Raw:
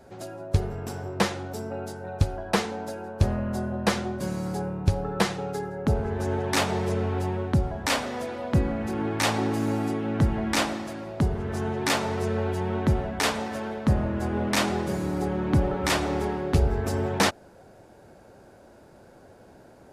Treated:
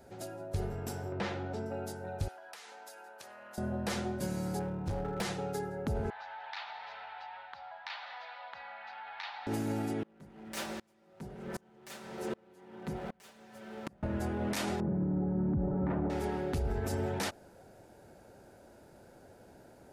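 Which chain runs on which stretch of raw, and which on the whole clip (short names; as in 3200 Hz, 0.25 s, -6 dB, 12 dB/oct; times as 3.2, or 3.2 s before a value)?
1.12–1.66 LPF 3300 Hz + upward compressor, threshold -27 dBFS
2.28–3.58 HPF 1000 Hz + compressor 12:1, threshold -41 dBFS
4.59–5.21 LPF 3900 Hz 6 dB/oct + hard clip -26 dBFS
6.1–9.47 elliptic band-pass 800–4200 Hz + compressor 3:1, threshold -36 dBFS
10.03–14.03 minimum comb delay 5.2 ms + HPF 79 Hz + dB-ramp tremolo swelling 1.3 Hz, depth 32 dB
14.8–16.1 Bessel low-pass 960 Hz, order 4 + bell 170 Hz +11.5 dB 1.5 oct
whole clip: high shelf 9300 Hz +7.5 dB; limiter -20 dBFS; notch 1100 Hz, Q 11; gain -5 dB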